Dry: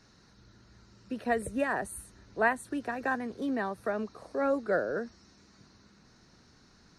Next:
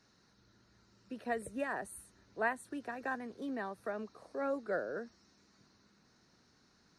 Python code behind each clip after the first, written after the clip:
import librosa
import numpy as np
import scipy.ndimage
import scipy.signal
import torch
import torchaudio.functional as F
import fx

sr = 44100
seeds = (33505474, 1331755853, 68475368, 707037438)

y = fx.low_shelf(x, sr, hz=93.0, db=-10.0)
y = y * librosa.db_to_amplitude(-7.0)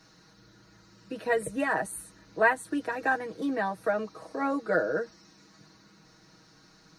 y = x + 0.82 * np.pad(x, (int(6.3 * sr / 1000.0), 0))[:len(x)]
y = y * librosa.db_to_amplitude(8.5)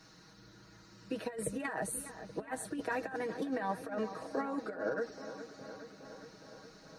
y = fx.over_compress(x, sr, threshold_db=-31.0, ratio=-0.5)
y = fx.echo_wet_lowpass(y, sr, ms=414, feedback_pct=71, hz=2400.0, wet_db=-12)
y = y * librosa.db_to_amplitude(-4.5)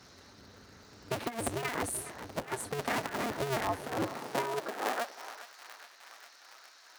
y = fx.cycle_switch(x, sr, every=2, mode='inverted')
y = fx.filter_sweep_highpass(y, sr, from_hz=61.0, to_hz=1300.0, start_s=3.69, end_s=5.54, q=0.82)
y = y * librosa.db_to_amplitude(3.0)